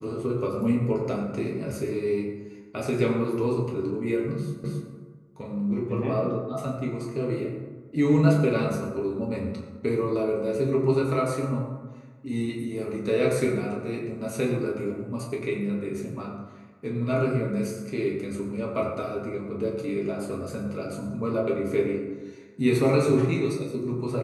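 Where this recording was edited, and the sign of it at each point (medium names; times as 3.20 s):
4.64 s: repeat of the last 0.27 s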